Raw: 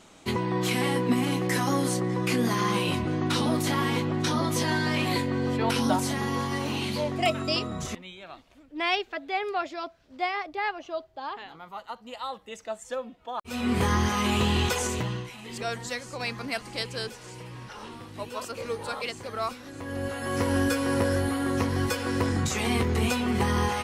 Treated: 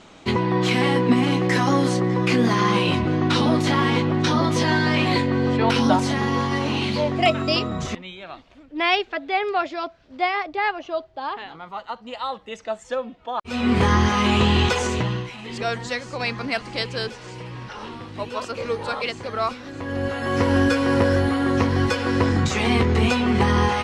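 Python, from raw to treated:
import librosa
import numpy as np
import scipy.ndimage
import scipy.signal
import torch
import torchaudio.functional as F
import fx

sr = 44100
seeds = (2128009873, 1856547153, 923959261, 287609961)

y = scipy.signal.sosfilt(scipy.signal.butter(2, 5000.0, 'lowpass', fs=sr, output='sos'), x)
y = y * librosa.db_to_amplitude(6.5)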